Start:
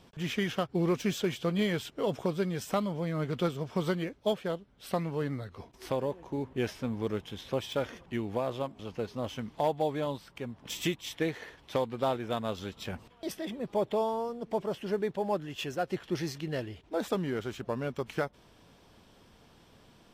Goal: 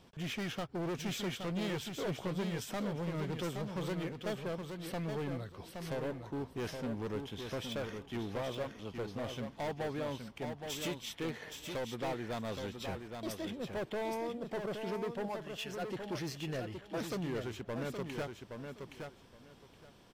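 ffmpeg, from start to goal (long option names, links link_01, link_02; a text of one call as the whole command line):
ffmpeg -i in.wav -filter_complex "[0:a]asettb=1/sr,asplit=3[link_01][link_02][link_03];[link_01]atrim=end=15.284[link_04];[link_02]atrim=start=15.28:end=15.82,asetpts=PTS-STARTPTS,afade=type=in:duration=0.004:curve=qsin,afade=type=out:start_time=0.536:duration=0.004:curve=qsin,equalizer=frequency=270:width=0.45:gain=-11.5[link_05];[link_03]atrim=start=15.816[link_06];[link_04][link_05]acrossfade=duration=0.004:curve1=hsin:curve2=qsin[link_07];[link_07][link_06]acrossfade=duration=0.004:curve1=qsin:curve2=hsin,asoftclip=type=hard:threshold=-31.5dB,aecho=1:1:820|1640|2460:0.501|0.0952|0.0181,volume=-3dB" out.wav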